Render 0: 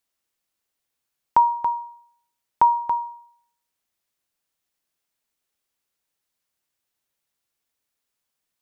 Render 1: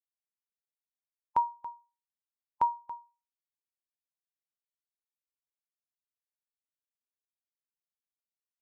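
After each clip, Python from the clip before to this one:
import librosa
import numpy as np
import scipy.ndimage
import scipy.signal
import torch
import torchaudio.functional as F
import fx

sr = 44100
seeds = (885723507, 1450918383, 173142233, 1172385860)

y = fx.bin_expand(x, sr, power=2.0)
y = F.gain(torch.from_numpy(y), -9.0).numpy()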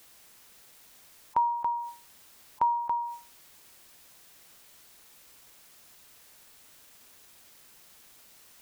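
y = fx.env_flatten(x, sr, amount_pct=70)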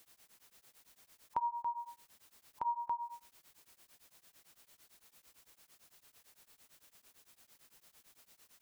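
y = x * np.abs(np.cos(np.pi * 8.9 * np.arange(len(x)) / sr))
y = F.gain(torch.from_numpy(y), -6.0).numpy()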